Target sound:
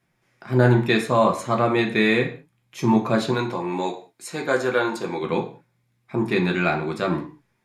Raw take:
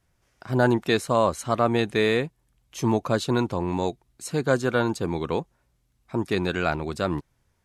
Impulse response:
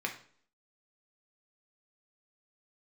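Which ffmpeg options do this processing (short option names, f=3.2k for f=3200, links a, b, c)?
-filter_complex "[0:a]asettb=1/sr,asplit=3[a][b][c];[a]atrim=end=3.314[d];[b]atrim=start=3.31:end=5.23,asetpts=PTS-STARTPTS,afade=t=in:d=0.004:c=qsin,afade=t=out:st=1.916:d=0.004:c=qsin,bass=f=250:g=-13,treble=f=4k:g=2[e];[c]atrim=start=5.226[f];[d][e]acrossfade=d=0.004:c1=hsin:c2=qsin[g];[g][f]acrossfade=d=0.004:c1=qsin:c2=hsin[h];[1:a]atrim=start_sample=2205,afade=t=out:st=0.26:d=0.01,atrim=end_sample=11907[i];[h][i]afir=irnorm=-1:irlink=0"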